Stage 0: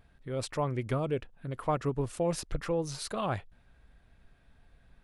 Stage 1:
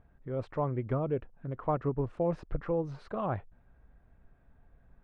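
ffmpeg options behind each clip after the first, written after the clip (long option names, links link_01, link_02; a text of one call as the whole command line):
ffmpeg -i in.wav -af "lowpass=1300" out.wav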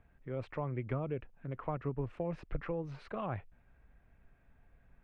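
ffmpeg -i in.wav -filter_complex "[0:a]equalizer=frequency=2400:width=1.4:gain=10,acrossover=split=180[link_01][link_02];[link_02]acompressor=threshold=-32dB:ratio=3[link_03];[link_01][link_03]amix=inputs=2:normalize=0,volume=-3.5dB" out.wav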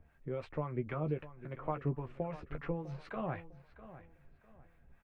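ffmpeg -i in.wav -filter_complex "[0:a]acrossover=split=700[link_01][link_02];[link_01]aeval=exprs='val(0)*(1-0.7/2+0.7/2*cos(2*PI*3.7*n/s))':channel_layout=same[link_03];[link_02]aeval=exprs='val(0)*(1-0.7/2-0.7/2*cos(2*PI*3.7*n/s))':channel_layout=same[link_04];[link_03][link_04]amix=inputs=2:normalize=0,asplit=2[link_05][link_06];[link_06]adelay=13,volume=-7dB[link_07];[link_05][link_07]amix=inputs=2:normalize=0,asplit=2[link_08][link_09];[link_09]adelay=652,lowpass=frequency=4400:poles=1,volume=-15dB,asplit=2[link_10][link_11];[link_11]adelay=652,lowpass=frequency=4400:poles=1,volume=0.29,asplit=2[link_12][link_13];[link_13]adelay=652,lowpass=frequency=4400:poles=1,volume=0.29[link_14];[link_08][link_10][link_12][link_14]amix=inputs=4:normalize=0,volume=3dB" out.wav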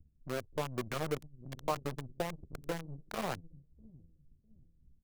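ffmpeg -i in.wav -filter_complex "[0:a]acrossover=split=310[link_01][link_02];[link_01]aeval=exprs='(tanh(200*val(0)+0.8)-tanh(0.8))/200':channel_layout=same[link_03];[link_02]aeval=exprs='val(0)*gte(abs(val(0)),0.0133)':channel_layout=same[link_04];[link_03][link_04]amix=inputs=2:normalize=0,volume=4.5dB" out.wav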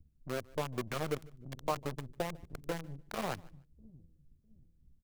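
ffmpeg -i in.wav -af "aecho=1:1:149|298:0.0631|0.0114" out.wav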